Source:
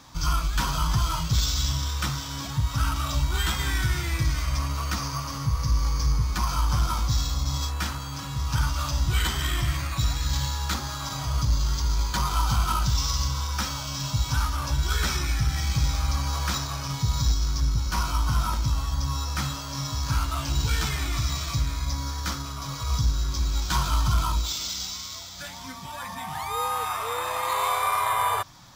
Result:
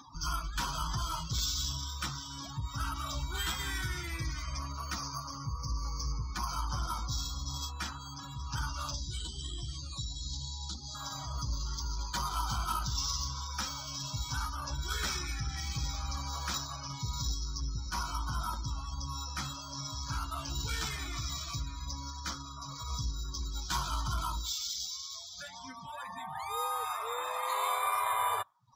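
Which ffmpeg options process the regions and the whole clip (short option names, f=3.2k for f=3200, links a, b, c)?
-filter_complex "[0:a]asettb=1/sr,asplit=3[a][b][c];[a]atrim=end=8.944[d];[b]atrim=start=8.94:end=10.95,asetpts=PTS-STARTPTS,afade=t=in:d=0.004:c=qsin,afade=t=out:st=2.006:d=0.004:c=qsin,lowpass=11k,highshelf=f=2.8k:t=q:w=1.5:g=9.5,acrossover=split=160|790[e][f][g];[e]acompressor=threshold=-24dB:ratio=4[h];[f]acompressor=threshold=-41dB:ratio=4[i];[g]acompressor=threshold=-36dB:ratio=4[j];[h][i][j]amix=inputs=3:normalize=0[k];[c]atrim=start=10.946[l];[d][k]acrossfade=d=0.004:c1=hsin:c2=qsin[m];[m][l]acrossfade=d=0.004:c1=qsin:c2=hsin,acompressor=mode=upward:threshold=-30dB:ratio=2.5,bass=f=250:g=-6,treble=f=4k:g=3,afftdn=nr=35:nf=-36,volume=-6.5dB"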